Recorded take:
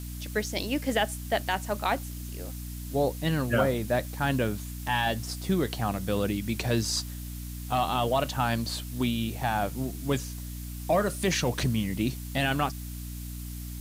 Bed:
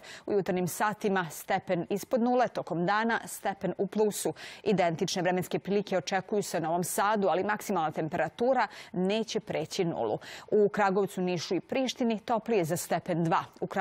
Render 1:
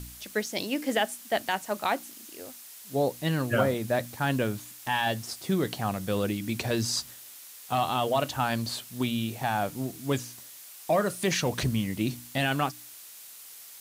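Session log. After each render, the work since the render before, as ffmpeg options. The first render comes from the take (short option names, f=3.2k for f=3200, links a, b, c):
-af "bandreject=f=60:t=h:w=4,bandreject=f=120:t=h:w=4,bandreject=f=180:t=h:w=4,bandreject=f=240:t=h:w=4,bandreject=f=300:t=h:w=4"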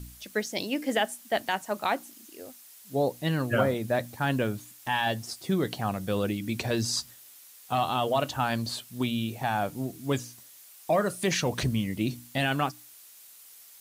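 -af "afftdn=nr=6:nf=-47"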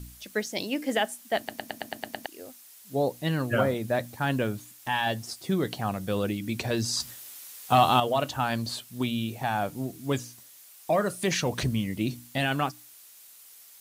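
-filter_complex "[0:a]asplit=11[a][b][c][d][e][f][g][h][i][j][k];[a]atrim=end=1.492[l];[b]atrim=start=1.378:end=1.492[m];[c]atrim=start=1.378:end=1.492[n];[d]atrim=start=1.378:end=1.492[o];[e]atrim=start=1.378:end=1.492[p];[f]atrim=start=1.378:end=1.492[q];[g]atrim=start=1.378:end=1.492[r];[h]atrim=start=1.378:end=1.492[s];[i]atrim=start=2.258:end=7.002[t];[j]atrim=start=6.998:end=8.002,asetpts=PTS-STARTPTS,volume=7dB[u];[k]atrim=start=7.998[v];[l][m]acrossfade=d=0.004:c1=hsin:c2=hsin[w];[w][n]acrossfade=d=0.004:c1=hsin:c2=hsin[x];[x][o]acrossfade=d=0.004:c1=hsin:c2=hsin[y];[y][p]acrossfade=d=0.004:c1=hsin:c2=hsin[z];[z][q]acrossfade=d=0.004:c1=hsin:c2=hsin[aa];[aa][r]acrossfade=d=0.004:c1=hsin:c2=hsin[ab];[ab][s]acrossfade=d=0.004:c1=hsin:c2=hsin[ac];[ac][t]acrossfade=d=0.004:c1=hsin:c2=hsin[ad];[ad][u]acrossfade=d=0.004:c1=hsin:c2=hsin[ae];[ae][v]acrossfade=d=0.004:c1=hsin:c2=hsin"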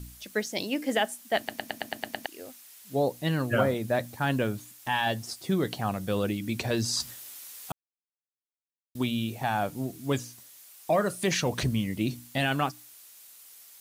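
-filter_complex "[0:a]asettb=1/sr,asplit=3[a][b][c];[a]atrim=end=1.344[d];[b]atrim=start=1.34:end=3,asetpts=PTS-STARTPTS,afade=t=in:d=0.004:c=qsin,afade=t=out:st=1.656:d=0.004:c=qsin,equalizer=f=2.3k:t=o:w=1.7:g=3[e];[c]atrim=start=2.996[f];[d][e]acrossfade=d=0.004:c1=hsin:c2=qsin[g];[g][f]acrossfade=d=0.004:c1=qsin:c2=hsin,asplit=3[h][i][j];[h]atrim=end=7.72,asetpts=PTS-STARTPTS,afade=t=out:st=7.716:d=0.004:c=hsin[k];[i]atrim=start=7.72:end=8.95,asetpts=PTS-STARTPTS,volume=0[l];[j]atrim=start=8.95,asetpts=PTS-STARTPTS,afade=t=in:d=0.004:c=hsin[m];[k][l][m]concat=n=3:v=0:a=1"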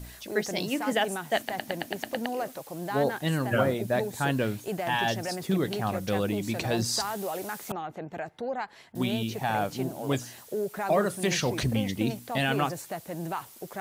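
-filter_complex "[1:a]volume=-6.5dB[a];[0:a][a]amix=inputs=2:normalize=0"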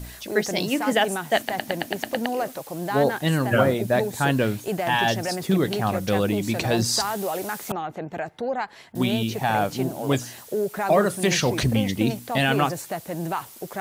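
-af "volume=5.5dB"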